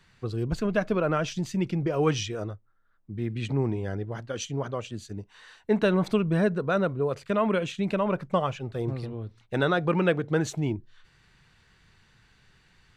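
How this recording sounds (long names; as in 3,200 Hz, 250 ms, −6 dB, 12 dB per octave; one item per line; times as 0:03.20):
background noise floor −63 dBFS
spectral slope −6.0 dB per octave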